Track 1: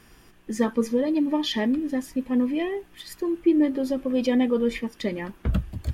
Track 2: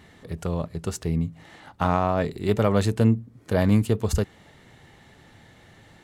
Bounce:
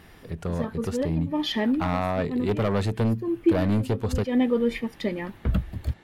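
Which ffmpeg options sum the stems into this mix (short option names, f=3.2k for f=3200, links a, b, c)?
-filter_complex "[0:a]volume=0dB[a];[1:a]highshelf=f=10k:g=-9,acontrast=41,asoftclip=type=hard:threshold=-12.5dB,volume=-6.5dB,asplit=2[b][c];[c]apad=whole_len=261774[d];[a][d]sidechaincompress=threshold=-41dB:ratio=3:attack=41:release=113[e];[e][b]amix=inputs=2:normalize=0,equalizer=f=6.9k:t=o:w=0.92:g=-5.5"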